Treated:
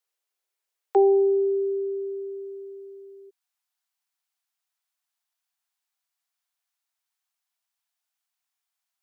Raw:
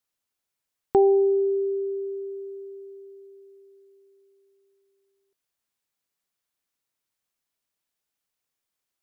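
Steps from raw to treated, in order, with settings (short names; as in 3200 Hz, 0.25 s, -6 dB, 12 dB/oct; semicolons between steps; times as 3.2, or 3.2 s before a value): Chebyshev high-pass 350 Hz, order 10, from 3.29 s 660 Hz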